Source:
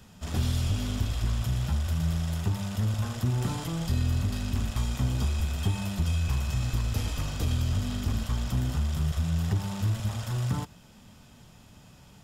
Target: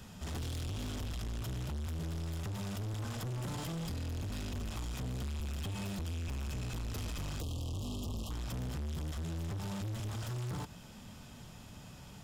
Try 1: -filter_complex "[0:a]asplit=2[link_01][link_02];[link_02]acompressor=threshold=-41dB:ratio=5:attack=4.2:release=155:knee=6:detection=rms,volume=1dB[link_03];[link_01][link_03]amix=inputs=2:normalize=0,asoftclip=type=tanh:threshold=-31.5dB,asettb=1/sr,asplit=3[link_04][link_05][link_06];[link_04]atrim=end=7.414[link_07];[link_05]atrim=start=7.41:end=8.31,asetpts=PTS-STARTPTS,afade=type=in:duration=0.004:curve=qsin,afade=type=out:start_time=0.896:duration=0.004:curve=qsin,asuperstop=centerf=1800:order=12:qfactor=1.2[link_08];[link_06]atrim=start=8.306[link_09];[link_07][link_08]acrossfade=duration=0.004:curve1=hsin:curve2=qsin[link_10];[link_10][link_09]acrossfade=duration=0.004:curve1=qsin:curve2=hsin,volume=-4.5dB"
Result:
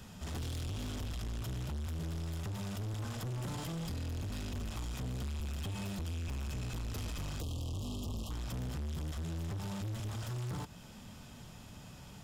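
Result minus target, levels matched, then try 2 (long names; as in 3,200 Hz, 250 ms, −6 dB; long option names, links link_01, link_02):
downward compressor: peak gain reduction +5 dB
-filter_complex "[0:a]asplit=2[link_01][link_02];[link_02]acompressor=threshold=-34.5dB:ratio=5:attack=4.2:release=155:knee=6:detection=rms,volume=1dB[link_03];[link_01][link_03]amix=inputs=2:normalize=0,asoftclip=type=tanh:threshold=-31.5dB,asettb=1/sr,asplit=3[link_04][link_05][link_06];[link_04]atrim=end=7.414[link_07];[link_05]atrim=start=7.41:end=8.31,asetpts=PTS-STARTPTS,afade=type=in:duration=0.004:curve=qsin,afade=type=out:start_time=0.896:duration=0.004:curve=qsin,asuperstop=centerf=1800:order=12:qfactor=1.2[link_08];[link_06]atrim=start=8.306[link_09];[link_07][link_08]acrossfade=duration=0.004:curve1=hsin:curve2=qsin[link_10];[link_10][link_09]acrossfade=duration=0.004:curve1=qsin:curve2=hsin,volume=-4.5dB"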